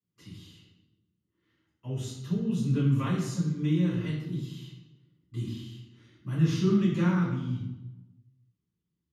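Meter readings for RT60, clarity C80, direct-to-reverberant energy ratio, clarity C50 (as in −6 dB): 1.0 s, 5.0 dB, −9.0 dB, 2.5 dB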